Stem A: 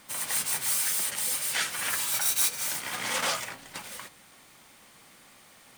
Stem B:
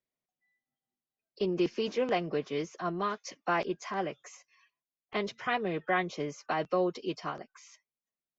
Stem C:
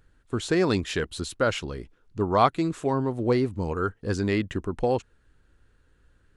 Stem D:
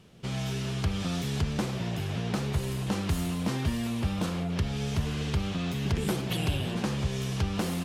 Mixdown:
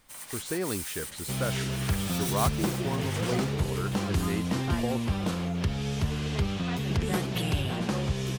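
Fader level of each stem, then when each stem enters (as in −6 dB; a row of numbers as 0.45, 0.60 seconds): −10.0, −10.0, −9.0, +0.5 decibels; 0.00, 1.20, 0.00, 1.05 seconds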